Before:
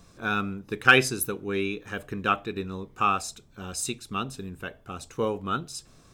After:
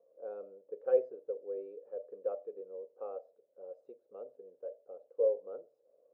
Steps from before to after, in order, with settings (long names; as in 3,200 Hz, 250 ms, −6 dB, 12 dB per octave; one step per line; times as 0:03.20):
flat-topped band-pass 530 Hz, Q 4.7
level +3.5 dB